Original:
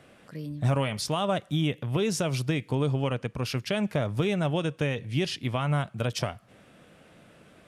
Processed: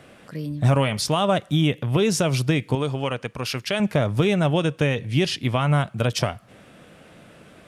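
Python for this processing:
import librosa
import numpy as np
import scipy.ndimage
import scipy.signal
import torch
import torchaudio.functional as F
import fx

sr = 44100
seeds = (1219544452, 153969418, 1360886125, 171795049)

y = fx.low_shelf(x, sr, hz=400.0, db=-8.5, at=(2.75, 3.8))
y = y * 10.0 ** (6.5 / 20.0)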